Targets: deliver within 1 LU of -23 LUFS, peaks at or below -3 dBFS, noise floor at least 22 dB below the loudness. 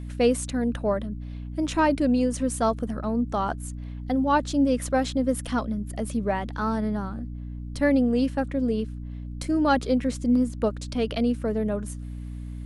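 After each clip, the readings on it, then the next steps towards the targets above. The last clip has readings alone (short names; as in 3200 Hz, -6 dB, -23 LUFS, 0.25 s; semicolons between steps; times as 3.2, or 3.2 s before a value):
hum 60 Hz; harmonics up to 300 Hz; hum level -33 dBFS; loudness -25.5 LUFS; peak -9.5 dBFS; loudness target -23.0 LUFS
-> notches 60/120/180/240/300 Hz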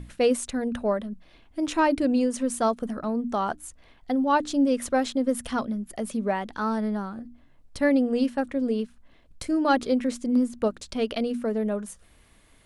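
hum none; loudness -26.0 LUFS; peak -11.0 dBFS; loudness target -23.0 LUFS
-> gain +3 dB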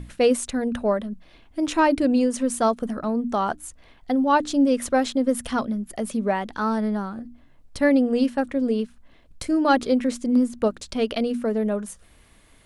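loudness -23.0 LUFS; peak -8.0 dBFS; noise floor -54 dBFS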